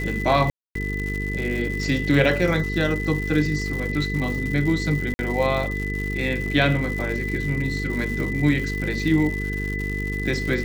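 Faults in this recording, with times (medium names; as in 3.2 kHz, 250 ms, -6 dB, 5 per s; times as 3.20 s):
buzz 50 Hz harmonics 9 -28 dBFS
crackle 230 per s -29 dBFS
whine 2 kHz -29 dBFS
0.50–0.75 s: dropout 253 ms
5.14–5.19 s: dropout 50 ms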